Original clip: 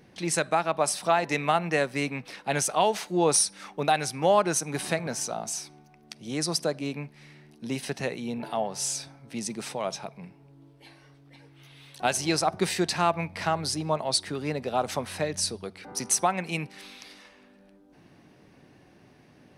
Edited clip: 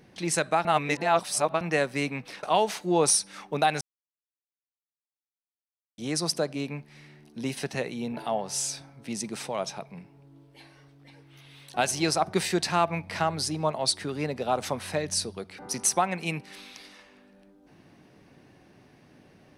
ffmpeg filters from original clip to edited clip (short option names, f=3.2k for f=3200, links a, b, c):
-filter_complex "[0:a]asplit=6[a][b][c][d][e][f];[a]atrim=end=0.652[g];[b]atrim=start=0.648:end=1.612,asetpts=PTS-STARTPTS,areverse[h];[c]atrim=start=1.608:end=2.432[i];[d]atrim=start=2.688:end=4.07,asetpts=PTS-STARTPTS,afade=t=out:st=1.378:d=0.004:c=hsin[j];[e]atrim=start=4.07:end=6.24,asetpts=PTS-STARTPTS,volume=0[k];[f]atrim=start=6.24,asetpts=PTS-STARTPTS,afade=t=in:d=0.004:c=hsin[l];[g][h]acrossfade=d=0.004:c1=hsin:c2=hsin[m];[m][i]acrossfade=d=0.004:c1=hsin:c2=hsin[n];[j][k][l]concat=n=3:v=0:a=1[o];[n][o]acrossfade=d=0.004:c1=hsin:c2=hsin"